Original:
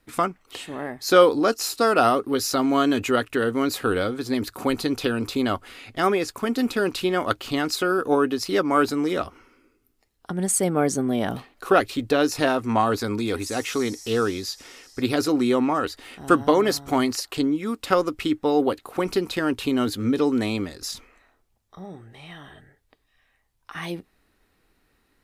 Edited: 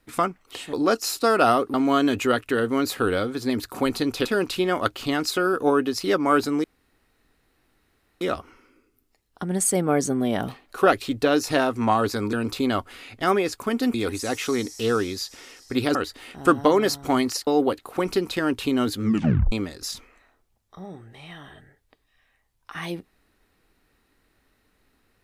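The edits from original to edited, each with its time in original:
0.73–1.3 cut
2.31–2.58 cut
5.09–6.7 move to 13.21
9.09 insert room tone 1.57 s
15.22–15.78 cut
17.3–18.47 cut
20.04 tape stop 0.48 s

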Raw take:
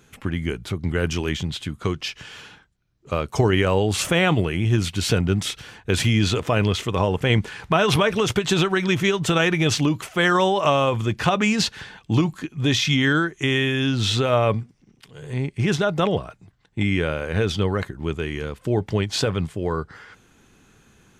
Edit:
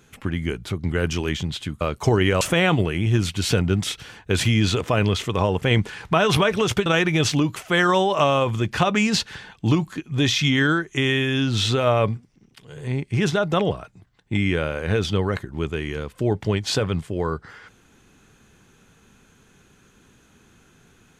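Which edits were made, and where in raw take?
1.81–3.13 cut
3.73–4 cut
8.45–9.32 cut

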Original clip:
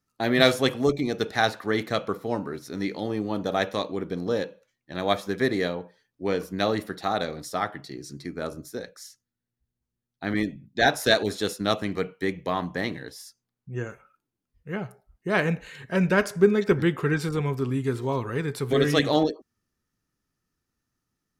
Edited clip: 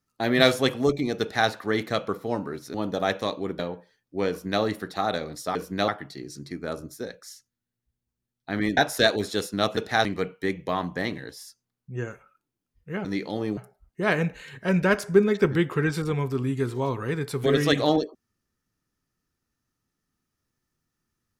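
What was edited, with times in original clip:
1.21–1.49 copy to 11.84
2.74–3.26 move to 14.84
4.11–5.66 cut
6.36–6.69 copy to 7.62
10.51–10.84 cut

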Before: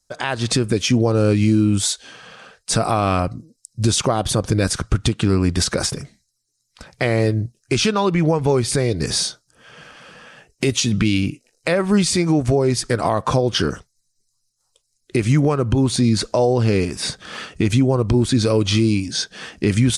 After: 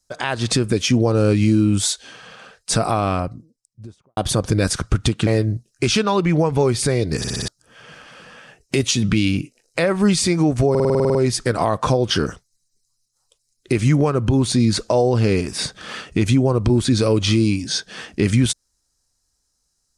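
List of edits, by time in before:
2.7–4.17 studio fade out
5.27–7.16 cut
9.07 stutter in place 0.06 s, 5 plays
12.59 stutter 0.05 s, 10 plays

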